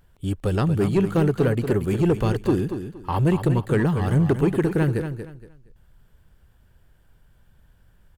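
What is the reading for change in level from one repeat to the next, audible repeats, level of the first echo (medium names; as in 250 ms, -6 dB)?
-12.0 dB, 3, -9.0 dB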